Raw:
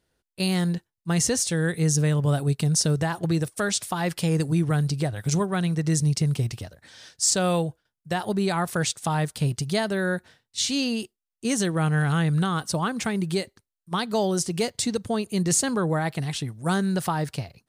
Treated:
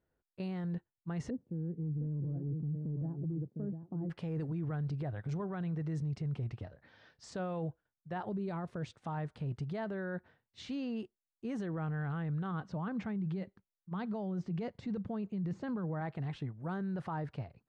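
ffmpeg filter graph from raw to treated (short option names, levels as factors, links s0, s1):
-filter_complex "[0:a]asettb=1/sr,asplit=3[s0][s1][s2];[s0]atrim=end=1.304[s3];[s1]atrim=start=1.3:end=4.1,asetpts=PTS-STARTPTS,afade=t=in:d=0.004:c=qsin,afade=t=out:st=2.796:d=0.004:c=qsin,asuperpass=centerf=210:order=4:qfactor=0.94,aecho=1:1:706:0.335,atrim=end_sample=123480[s4];[s2]atrim=start=4.096[s5];[s3][s4]acrossfade=d=0.004:c1=hsin:c2=qsin[s6];[s6][s5]acrossfade=d=0.004:c1=qsin:c2=hsin,asettb=1/sr,asplit=3[s7][s8][s9];[s7]atrim=end=6.644[s10];[s8]atrim=start=6.64:end=7.24,asetpts=PTS-STARTPTS,afade=t=in:d=0.004:c=qsin,afade=t=out:st=0.596:d=0.004:c=qsin,highshelf=f=6600:t=q:w=1.5:g=-7.5,asplit=2[s11][s12];[s12]adelay=30,volume=0.266[s13];[s11][s13]amix=inputs=2:normalize=0,atrim=end_sample=26460[s14];[s9]atrim=start=7.236[s15];[s10][s14]acrossfade=d=0.004:c1=hsin:c2=qsin[s16];[s16][s15]acrossfade=d=0.004:c1=qsin:c2=hsin,asettb=1/sr,asplit=3[s17][s18][s19];[s17]atrim=end=8.294[s20];[s18]atrim=start=8.29:end=8.94,asetpts=PTS-STARTPTS,afade=t=in:d=0.004:c=qsin,afade=t=out:st=0.646:d=0.004:c=qsin,equalizer=f=1500:t=o:w=1.8:g=-7,bandreject=f=790:w=7.4[s21];[s19]atrim=start=8.936[s22];[s20][s21]acrossfade=d=0.004:c1=hsin:c2=qsin[s23];[s23][s22]acrossfade=d=0.004:c1=qsin:c2=hsin,asettb=1/sr,asplit=3[s24][s25][s26];[s24]atrim=end=12.514[s27];[s25]atrim=start=12.51:end=16.01,asetpts=PTS-STARTPTS,afade=t=in:d=0.004:c=qsin,afade=t=out:st=3.496:d=0.004:c=qsin,lowpass=f=7400:w=0.5412,lowpass=f=7400:w=1.3066,equalizer=f=190:t=o:w=0.4:g=9.5,deesser=0.6[s28];[s26]atrim=start=16.006[s29];[s27][s28]acrossfade=d=0.004:c1=hsin:c2=qsin[s30];[s30][s29]acrossfade=d=0.004:c1=qsin:c2=hsin,lowpass=1600,alimiter=limit=0.0668:level=0:latency=1:release=12,volume=0.422"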